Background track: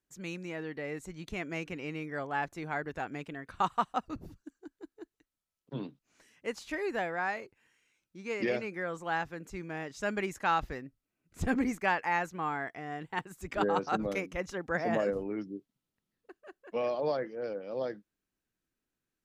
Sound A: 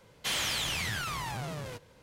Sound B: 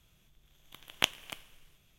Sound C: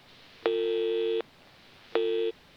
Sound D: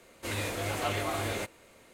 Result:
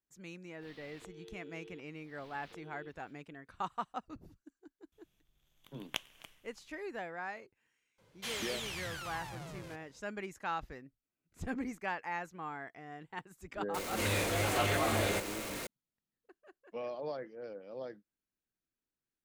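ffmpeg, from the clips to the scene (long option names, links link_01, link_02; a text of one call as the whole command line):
ffmpeg -i bed.wav -i cue0.wav -i cue1.wav -i cue2.wav -i cue3.wav -filter_complex "[0:a]volume=-8.5dB[link_01];[3:a]acompressor=threshold=-43dB:ratio=16:attack=4:release=367:knee=1:detection=rms[link_02];[4:a]aeval=exprs='val(0)+0.5*0.0188*sgn(val(0))':channel_layout=same[link_03];[link_02]atrim=end=2.56,asetpts=PTS-STARTPTS,volume=-5.5dB,afade=type=in:duration=0.05,afade=type=out:start_time=2.51:duration=0.05,adelay=590[link_04];[2:a]atrim=end=1.98,asetpts=PTS-STARTPTS,volume=-10.5dB,afade=type=in:duration=0.004:curve=hsin,afade=type=out:start_time=1.976:duration=0.004:curve=hsin,adelay=4920[link_05];[1:a]atrim=end=2.02,asetpts=PTS-STARTPTS,volume=-9dB,afade=type=in:duration=0.004:curve=hsin,afade=type=out:start_time=2.016:duration=0.004:curve=hsin,adelay=7980[link_06];[link_03]atrim=end=1.93,asetpts=PTS-STARTPTS,volume=-1.5dB,afade=type=in:duration=0.004:curve=hsin,afade=type=out:start_time=1.926:duration=0.004:curve=hsin,adelay=13740[link_07];[link_01][link_04][link_05][link_06][link_07]amix=inputs=5:normalize=0" out.wav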